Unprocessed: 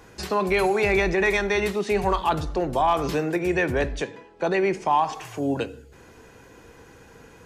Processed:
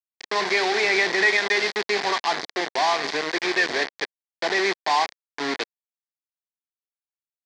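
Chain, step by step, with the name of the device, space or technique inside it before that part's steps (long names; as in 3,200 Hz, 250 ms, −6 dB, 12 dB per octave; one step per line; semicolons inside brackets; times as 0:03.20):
hand-held game console (bit reduction 4 bits; loudspeaker in its box 490–5,200 Hz, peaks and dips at 550 Hz −8 dB, 910 Hz −4 dB, 1,300 Hz −8 dB, 1,900 Hz +5 dB, 2,800 Hz −7 dB, 4,500 Hz +3 dB)
level +3 dB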